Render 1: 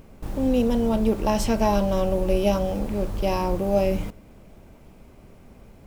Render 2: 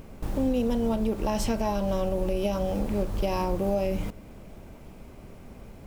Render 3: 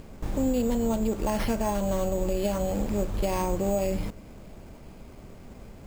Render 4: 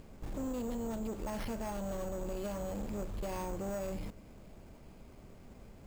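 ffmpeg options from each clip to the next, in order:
ffmpeg -i in.wav -filter_complex "[0:a]asplit=2[link_01][link_02];[link_02]acompressor=threshold=-31dB:ratio=6,volume=2.5dB[link_03];[link_01][link_03]amix=inputs=2:normalize=0,alimiter=limit=-12.5dB:level=0:latency=1:release=182,volume=-4.5dB" out.wav
ffmpeg -i in.wav -af "acrusher=samples=6:mix=1:aa=0.000001" out.wav
ffmpeg -i in.wav -af "asoftclip=type=tanh:threshold=-25dB,volume=-8dB" out.wav

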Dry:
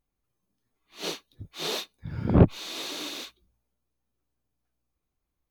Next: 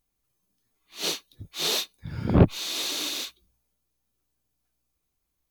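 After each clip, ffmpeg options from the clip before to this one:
ffmpeg -i in.wav -af "highshelf=frequency=3000:gain=10" out.wav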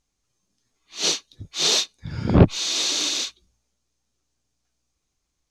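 ffmpeg -i in.wav -af "lowpass=frequency=6400:width_type=q:width=2,volume=3.5dB" out.wav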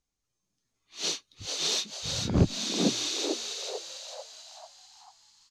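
ffmpeg -i in.wav -filter_complex "[0:a]acrossover=split=440|3000[link_01][link_02][link_03];[link_02]acompressor=threshold=-26dB:ratio=6[link_04];[link_01][link_04][link_03]amix=inputs=3:normalize=0,asplit=2[link_05][link_06];[link_06]asplit=6[link_07][link_08][link_09][link_10][link_11][link_12];[link_07]adelay=443,afreqshift=110,volume=-4.5dB[link_13];[link_08]adelay=886,afreqshift=220,volume=-10.5dB[link_14];[link_09]adelay=1329,afreqshift=330,volume=-16.5dB[link_15];[link_10]adelay=1772,afreqshift=440,volume=-22.6dB[link_16];[link_11]adelay=2215,afreqshift=550,volume=-28.6dB[link_17];[link_12]adelay=2658,afreqshift=660,volume=-34.6dB[link_18];[link_13][link_14][link_15][link_16][link_17][link_18]amix=inputs=6:normalize=0[link_19];[link_05][link_19]amix=inputs=2:normalize=0,volume=-8.5dB" out.wav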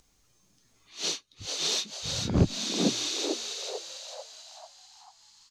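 ffmpeg -i in.wav -af "acompressor=mode=upward:threshold=-51dB:ratio=2.5" out.wav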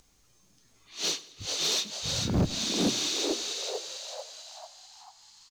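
ffmpeg -i in.wav -filter_complex "[0:a]asplit=2[link_01][link_02];[link_02]acrusher=bits=3:mode=log:mix=0:aa=0.000001,volume=-11dB[link_03];[link_01][link_03]amix=inputs=2:normalize=0,asoftclip=type=tanh:threshold=-19.5dB,aecho=1:1:98|196|294|392:0.106|0.0551|0.0286|0.0149" out.wav

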